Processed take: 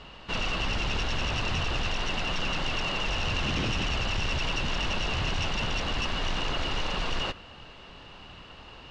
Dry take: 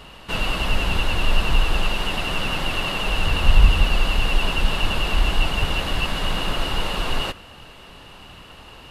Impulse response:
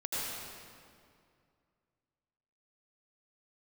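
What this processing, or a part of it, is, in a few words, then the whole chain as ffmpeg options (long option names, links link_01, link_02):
synthesiser wavefolder: -af "aeval=exprs='0.112*(abs(mod(val(0)/0.112+3,4)-2)-1)':channel_layout=same,lowpass=frequency=6200:width=0.5412,lowpass=frequency=6200:width=1.3066,volume=-4dB"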